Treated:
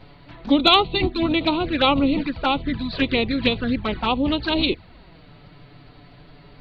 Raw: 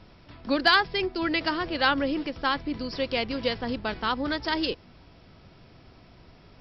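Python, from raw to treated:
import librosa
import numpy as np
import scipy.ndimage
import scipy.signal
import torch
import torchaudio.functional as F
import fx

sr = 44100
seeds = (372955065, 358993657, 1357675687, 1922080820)

y = fx.formant_shift(x, sr, semitones=-3)
y = fx.env_flanger(y, sr, rest_ms=8.5, full_db=-24.5)
y = y * 10.0 ** (9.0 / 20.0)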